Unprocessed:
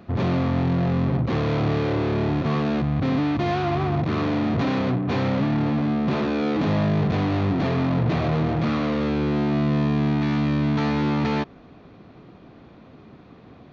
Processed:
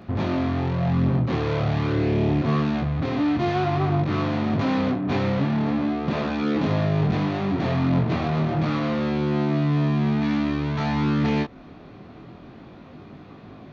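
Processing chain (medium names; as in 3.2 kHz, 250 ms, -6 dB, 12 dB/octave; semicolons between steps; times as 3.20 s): band-stop 480 Hz, Q 12; in parallel at +1.5 dB: compression, threshold -32 dBFS, peak gain reduction 13.5 dB; on the sum: chorus 0.22 Hz, delay 19 ms, depth 7.9 ms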